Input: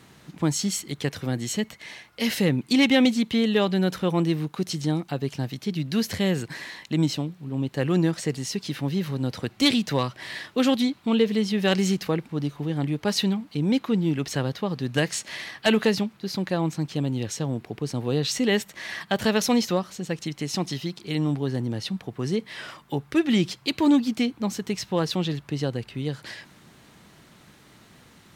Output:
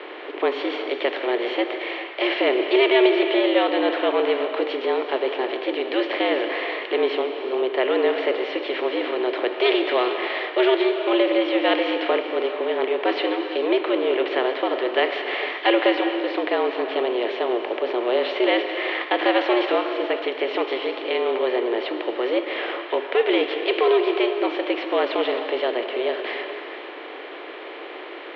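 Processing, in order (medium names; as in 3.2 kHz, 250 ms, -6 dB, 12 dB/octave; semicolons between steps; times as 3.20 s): spectral levelling over time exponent 0.6; gated-style reverb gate 490 ms flat, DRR 5.5 dB; mistuned SSB +120 Hz 220–3100 Hz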